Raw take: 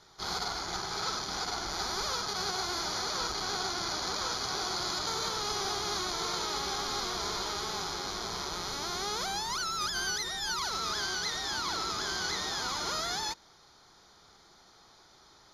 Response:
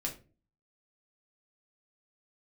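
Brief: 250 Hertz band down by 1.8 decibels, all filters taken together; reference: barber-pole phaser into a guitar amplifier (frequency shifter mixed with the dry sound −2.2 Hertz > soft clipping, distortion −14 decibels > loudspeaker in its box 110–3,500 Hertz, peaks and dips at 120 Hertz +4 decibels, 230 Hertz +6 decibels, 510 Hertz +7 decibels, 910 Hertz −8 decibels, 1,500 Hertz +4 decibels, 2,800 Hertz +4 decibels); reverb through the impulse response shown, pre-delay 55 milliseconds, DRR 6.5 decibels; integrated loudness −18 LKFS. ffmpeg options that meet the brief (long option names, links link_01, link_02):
-filter_complex "[0:a]equalizer=frequency=250:width_type=o:gain=-6,asplit=2[link_01][link_02];[1:a]atrim=start_sample=2205,adelay=55[link_03];[link_02][link_03]afir=irnorm=-1:irlink=0,volume=-8dB[link_04];[link_01][link_04]amix=inputs=2:normalize=0,asplit=2[link_05][link_06];[link_06]afreqshift=-2.2[link_07];[link_05][link_07]amix=inputs=2:normalize=1,asoftclip=threshold=-32.5dB,highpass=110,equalizer=frequency=120:width_type=q:width=4:gain=4,equalizer=frequency=230:width_type=q:width=4:gain=6,equalizer=frequency=510:width_type=q:width=4:gain=7,equalizer=frequency=910:width_type=q:width=4:gain=-8,equalizer=frequency=1500:width_type=q:width=4:gain=4,equalizer=frequency=2800:width_type=q:width=4:gain=4,lowpass=frequency=3500:width=0.5412,lowpass=frequency=3500:width=1.3066,volume=21.5dB"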